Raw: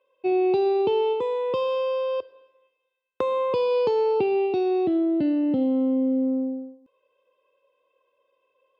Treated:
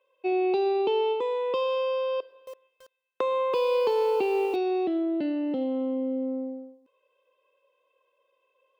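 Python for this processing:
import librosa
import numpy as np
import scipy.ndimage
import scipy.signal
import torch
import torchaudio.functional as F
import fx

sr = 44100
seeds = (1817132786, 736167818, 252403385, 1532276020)

y = scipy.signal.sosfilt(scipy.signal.butter(2, 340.0, 'highpass', fs=sr, output='sos'), x)
y = fx.peak_eq(y, sr, hz=2600.0, db=2.5, octaves=1.7)
y = fx.echo_crushed(y, sr, ms=331, feedback_pct=35, bits=7, wet_db=-10.5, at=(2.14, 4.56))
y = F.gain(torch.from_numpy(y), -1.5).numpy()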